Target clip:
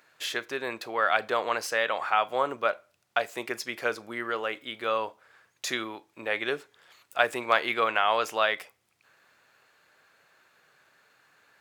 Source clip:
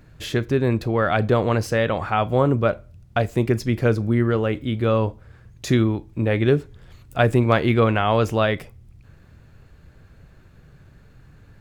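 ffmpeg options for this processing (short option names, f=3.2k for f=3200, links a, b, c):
-af "highpass=840"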